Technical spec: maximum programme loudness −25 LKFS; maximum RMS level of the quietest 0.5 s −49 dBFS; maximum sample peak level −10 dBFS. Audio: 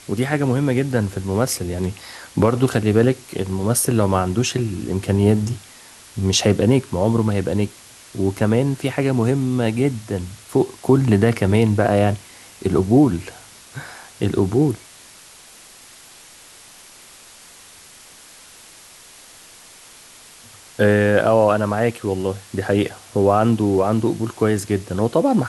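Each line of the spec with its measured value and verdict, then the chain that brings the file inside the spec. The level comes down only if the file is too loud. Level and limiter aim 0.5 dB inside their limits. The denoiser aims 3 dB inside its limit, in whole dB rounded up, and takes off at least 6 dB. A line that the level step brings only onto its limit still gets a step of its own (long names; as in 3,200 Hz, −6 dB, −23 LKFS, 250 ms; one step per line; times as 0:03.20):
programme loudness −19.5 LKFS: out of spec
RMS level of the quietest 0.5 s −45 dBFS: out of spec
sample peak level −4.0 dBFS: out of spec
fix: level −6 dB
brickwall limiter −10.5 dBFS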